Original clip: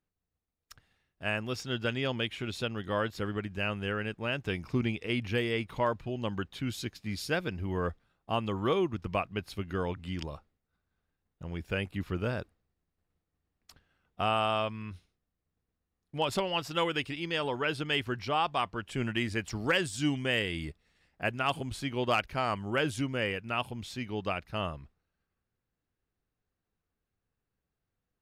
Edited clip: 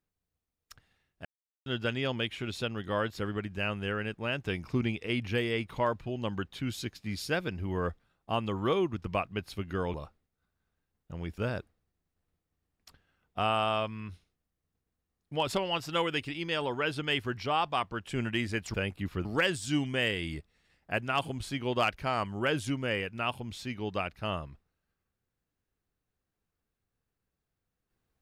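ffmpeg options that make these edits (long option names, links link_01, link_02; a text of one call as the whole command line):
ffmpeg -i in.wav -filter_complex "[0:a]asplit=7[link_01][link_02][link_03][link_04][link_05][link_06][link_07];[link_01]atrim=end=1.25,asetpts=PTS-STARTPTS,afade=type=out:start_time=1.246:duration=0.004:curve=hsin[link_08];[link_02]atrim=start=1.25:end=1.66,asetpts=PTS-STARTPTS,volume=0[link_09];[link_03]atrim=start=1.66:end=9.942,asetpts=PTS-STARTPTS,afade=type=in:duration=0.004:curve=hsin[link_10];[link_04]atrim=start=10.248:end=11.692[link_11];[link_05]atrim=start=12.198:end=19.562[link_12];[link_06]atrim=start=11.688:end=12.202[link_13];[link_07]atrim=start=19.558[link_14];[link_08][link_09][link_10]concat=n=3:v=0:a=1[link_15];[link_15][link_11]acrossfade=duration=0.004:curve1=hsin:curve2=hsin[link_16];[link_16][link_12]acrossfade=duration=0.004:curve1=hsin:curve2=hsin[link_17];[link_17][link_13]acrossfade=duration=0.004:curve1=hsin:curve2=hsin[link_18];[link_18][link_14]acrossfade=duration=0.004:curve1=hsin:curve2=hsin" out.wav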